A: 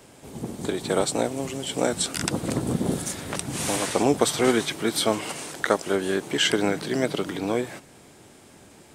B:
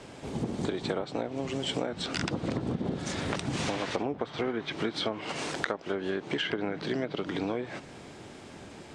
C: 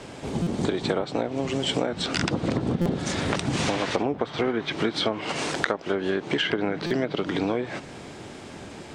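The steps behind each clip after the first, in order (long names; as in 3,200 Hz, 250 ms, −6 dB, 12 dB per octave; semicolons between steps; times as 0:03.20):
treble cut that deepens with the level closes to 2,100 Hz, closed at −17 dBFS; low-pass filter 5,200 Hz 12 dB per octave; downward compressor 10 to 1, threshold −32 dBFS, peak gain reduction 18 dB; level +4.5 dB
buffer that repeats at 0:00.42/0:02.81/0:06.86, samples 256, times 7; level +6 dB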